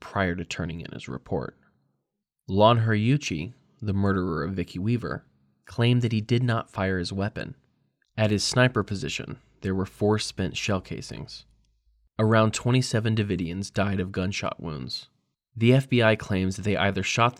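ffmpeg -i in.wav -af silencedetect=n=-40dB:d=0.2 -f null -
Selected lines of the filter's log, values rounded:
silence_start: 1.49
silence_end: 2.48 | silence_duration: 0.99
silence_start: 3.51
silence_end: 3.82 | silence_duration: 0.32
silence_start: 5.18
silence_end: 5.67 | silence_duration: 0.49
silence_start: 7.52
silence_end: 8.18 | silence_duration: 0.66
silence_start: 9.34
silence_end: 9.63 | silence_duration: 0.28
silence_start: 11.40
silence_end: 12.19 | silence_duration: 0.79
silence_start: 15.03
silence_end: 15.56 | silence_duration: 0.53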